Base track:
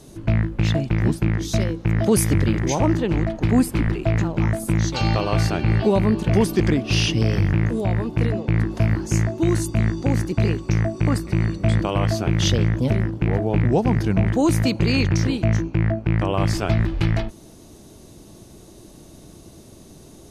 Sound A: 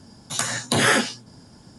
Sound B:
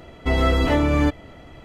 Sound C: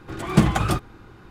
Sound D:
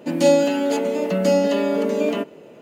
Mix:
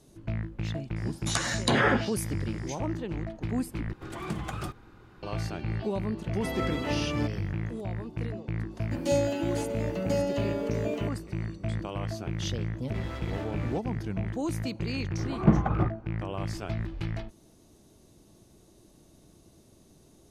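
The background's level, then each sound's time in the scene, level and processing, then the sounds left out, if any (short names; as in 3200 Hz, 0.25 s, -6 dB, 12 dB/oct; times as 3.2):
base track -13 dB
0.96 add A -2.5 dB + treble ducked by the level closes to 1500 Hz, closed at -14.5 dBFS
3.93 replace with C -7 dB + compressor 2.5:1, threshold -26 dBFS
6.17 add B -11 dB + HPF 110 Hz
8.85 add D -11 dB
12.68 add B -15.5 dB + hard clip -20 dBFS
15.1 add C -4 dB + LPF 1100 Hz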